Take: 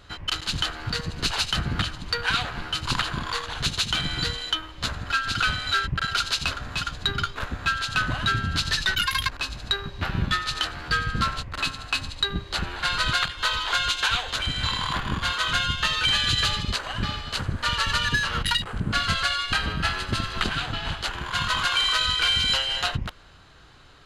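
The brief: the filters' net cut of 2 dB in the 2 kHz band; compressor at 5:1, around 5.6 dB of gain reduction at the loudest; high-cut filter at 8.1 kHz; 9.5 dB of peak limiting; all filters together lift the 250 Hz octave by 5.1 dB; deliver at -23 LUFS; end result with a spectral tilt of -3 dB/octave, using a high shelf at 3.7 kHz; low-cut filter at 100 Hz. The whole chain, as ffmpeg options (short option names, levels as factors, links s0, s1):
-af "highpass=100,lowpass=8100,equalizer=f=250:t=o:g=7.5,equalizer=f=2000:t=o:g=-4.5,highshelf=f=3700:g=6,acompressor=threshold=0.0562:ratio=5,volume=2.24,alimiter=limit=0.237:level=0:latency=1"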